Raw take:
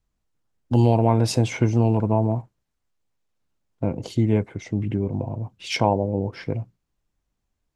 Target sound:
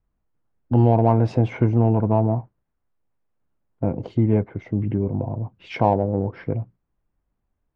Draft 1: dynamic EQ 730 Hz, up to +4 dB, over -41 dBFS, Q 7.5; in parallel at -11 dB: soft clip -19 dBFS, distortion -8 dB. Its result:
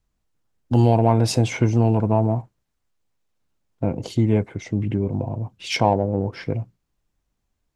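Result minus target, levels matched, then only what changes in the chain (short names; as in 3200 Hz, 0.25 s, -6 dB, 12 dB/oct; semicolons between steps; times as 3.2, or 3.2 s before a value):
2000 Hz band +6.0 dB
add after dynamic EQ: LPF 1600 Hz 12 dB/oct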